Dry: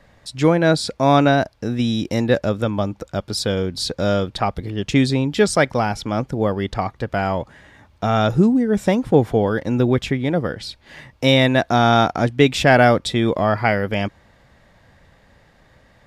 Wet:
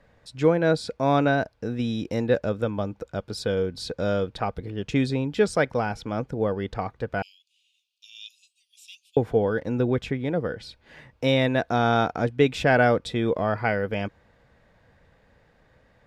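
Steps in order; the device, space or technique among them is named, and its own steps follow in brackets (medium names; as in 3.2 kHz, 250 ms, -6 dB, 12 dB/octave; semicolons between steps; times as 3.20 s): inside a helmet (treble shelf 3.8 kHz -6.5 dB; small resonant body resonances 470/1500/2500 Hz, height 7 dB); 7.22–9.17 s: steep high-pass 2.6 kHz 96 dB/octave; trim -7 dB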